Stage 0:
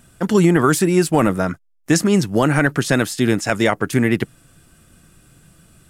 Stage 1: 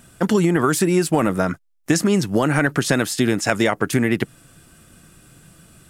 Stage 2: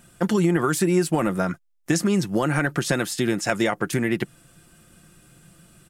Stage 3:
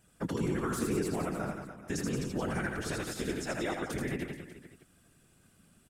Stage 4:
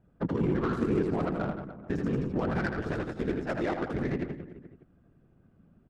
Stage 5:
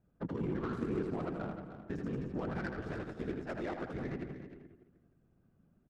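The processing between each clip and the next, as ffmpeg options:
ffmpeg -i in.wav -af "acompressor=threshold=-16dB:ratio=6,lowshelf=frequency=84:gain=-6,volume=3dB" out.wav
ffmpeg -i in.wav -af "aecho=1:1:5.7:0.33,volume=-4.5dB" out.wav
ffmpeg -i in.wav -af "afftfilt=real='hypot(re,im)*cos(2*PI*random(0))':imag='hypot(re,im)*sin(2*PI*random(1))':win_size=512:overlap=0.75,aecho=1:1:80|176|291.2|429.4|595.3:0.631|0.398|0.251|0.158|0.1,volume=-7.5dB" out.wav
ffmpeg -i in.wav -af "adynamicsmooth=sensitivity=3.5:basefreq=900,volume=4.5dB" out.wav
ffmpeg -i in.wav -af "aecho=1:1:307:0.266,volume=-8.5dB" out.wav

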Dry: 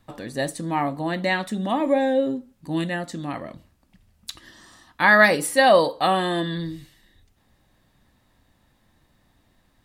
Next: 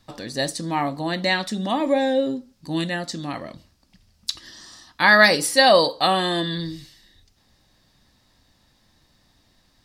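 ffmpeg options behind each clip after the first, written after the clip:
ffmpeg -i in.wav -af "equalizer=frequency=5000:width=1.4:gain=13" out.wav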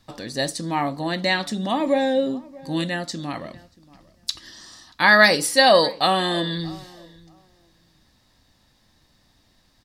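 ffmpeg -i in.wav -filter_complex "[0:a]asplit=2[link_01][link_02];[link_02]adelay=632,lowpass=frequency=1700:poles=1,volume=-21.5dB,asplit=2[link_03][link_04];[link_04]adelay=632,lowpass=frequency=1700:poles=1,volume=0.18[link_05];[link_01][link_03][link_05]amix=inputs=3:normalize=0" out.wav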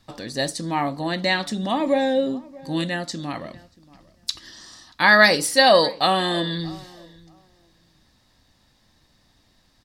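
ffmpeg -i in.wav -ar 44100 -c:a nellymoser out.flv

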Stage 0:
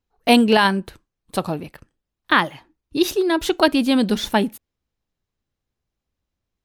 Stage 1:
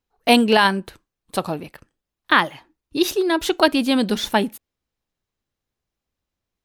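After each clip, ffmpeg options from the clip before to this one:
ffmpeg -i in.wav -af "lowshelf=frequency=250:gain=-5.5,volume=1dB" out.wav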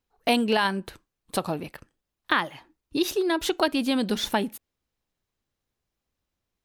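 ffmpeg -i in.wav -af "acompressor=threshold=-25dB:ratio=2" out.wav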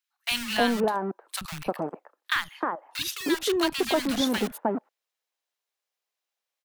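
ffmpeg -i in.wav -filter_complex "[0:a]acrossover=split=530|1200[link_01][link_02][link_03];[link_01]acrusher=bits=4:mix=0:aa=0.000001[link_04];[link_04][link_02][link_03]amix=inputs=3:normalize=0,acrossover=split=170|1200[link_05][link_06][link_07];[link_05]adelay=40[link_08];[link_06]adelay=310[link_09];[link_08][link_09][link_07]amix=inputs=3:normalize=0" out.wav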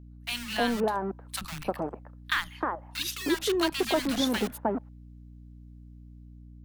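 ffmpeg -i in.wav -af "dynaudnorm=framelen=250:gausssize=5:maxgain=5dB,aeval=exprs='val(0)+0.01*(sin(2*PI*60*n/s)+sin(2*PI*2*60*n/s)/2+sin(2*PI*3*60*n/s)/3+sin(2*PI*4*60*n/s)/4+sin(2*PI*5*60*n/s)/5)':channel_layout=same,volume=-6.5dB" out.wav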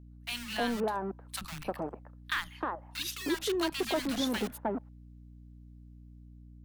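ffmpeg -i in.wav -af "asoftclip=type=tanh:threshold=-16.5dB,volume=-3.5dB" out.wav

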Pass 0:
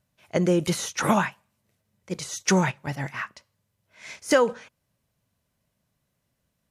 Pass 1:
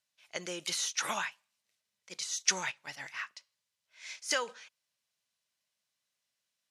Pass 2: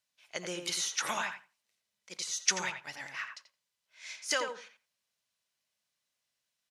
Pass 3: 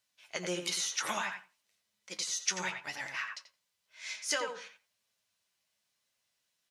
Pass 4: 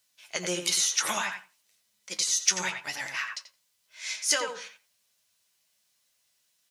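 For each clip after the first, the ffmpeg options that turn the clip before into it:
ffmpeg -i in.wav -af "bandpass=frequency=4600:width_type=q:width=0.83:csg=0" out.wav
ffmpeg -i in.wav -filter_complex "[0:a]asplit=2[link_01][link_02];[link_02]adelay=86,lowpass=frequency=1700:poles=1,volume=-5dB,asplit=2[link_03][link_04];[link_04]adelay=86,lowpass=frequency=1700:poles=1,volume=0.18,asplit=2[link_05][link_06];[link_06]adelay=86,lowpass=frequency=1700:poles=1,volume=0.18[link_07];[link_01][link_03][link_05][link_07]amix=inputs=4:normalize=0" out.wav
ffmpeg -i in.wav -af "acompressor=threshold=-37dB:ratio=2,flanger=delay=9:depth=2.3:regen=46:speed=0.98:shape=triangular,volume=7.5dB" out.wav
ffmpeg -i in.wav -af "highshelf=frequency=4800:gain=9,asoftclip=type=hard:threshold=-14dB,volume=3.5dB" out.wav

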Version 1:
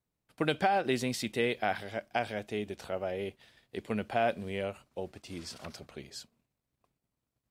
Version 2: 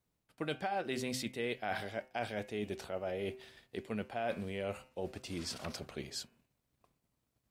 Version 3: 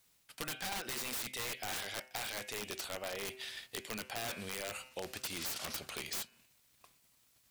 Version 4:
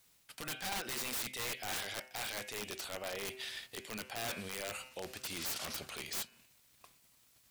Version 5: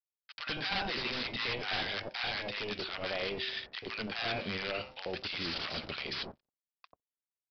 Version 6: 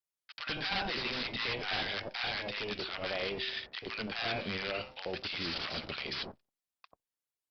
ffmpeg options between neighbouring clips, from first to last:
ffmpeg -i in.wav -af "bandreject=frequency=128.5:width_type=h:width=4,bandreject=frequency=257:width_type=h:width=4,bandreject=frequency=385.5:width_type=h:width=4,bandreject=frequency=514:width_type=h:width=4,bandreject=frequency=642.5:width_type=h:width=4,bandreject=frequency=771:width_type=h:width=4,bandreject=frequency=899.5:width_type=h:width=4,bandreject=frequency=1028:width_type=h:width=4,bandreject=frequency=1156.5:width_type=h:width=4,bandreject=frequency=1285:width_type=h:width=4,bandreject=frequency=1413.5:width_type=h:width=4,bandreject=frequency=1542:width_type=h:width=4,bandreject=frequency=1670.5:width_type=h:width=4,bandreject=frequency=1799:width_type=h:width=4,bandreject=frequency=1927.5:width_type=h:width=4,bandreject=frequency=2056:width_type=h:width=4,bandreject=frequency=2184.5:width_type=h:width=4,bandreject=frequency=2313:width_type=h:width=4,bandreject=frequency=2441.5:width_type=h:width=4,bandreject=frequency=2570:width_type=h:width=4,bandreject=frequency=2698.5:width_type=h:width=4,bandreject=frequency=2827:width_type=h:width=4,bandreject=frequency=2955.5:width_type=h:width=4,areverse,acompressor=threshold=-39dB:ratio=4,areverse,volume=3.5dB" out.wav
ffmpeg -i in.wav -af "tiltshelf=frequency=1100:gain=-9.5,aeval=exprs='(mod(44.7*val(0)+1,2)-1)/44.7':channel_layout=same,acompressor=threshold=-49dB:ratio=3,volume=9dB" out.wav
ffmpeg -i in.wav -af "alimiter=level_in=10.5dB:limit=-24dB:level=0:latency=1:release=78,volume=-10.5dB,volume=2.5dB" out.wav
ffmpeg -i in.wav -filter_complex "[0:a]aresample=11025,aeval=exprs='sgn(val(0))*max(abs(val(0))-0.00126,0)':channel_layout=same,aresample=44100,acrossover=split=910[link_01][link_02];[link_01]adelay=90[link_03];[link_03][link_02]amix=inputs=2:normalize=0,volume=8dB" out.wav
ffmpeg -i in.wav -ar 48000 -c:a libopus -b:a 48k out.opus

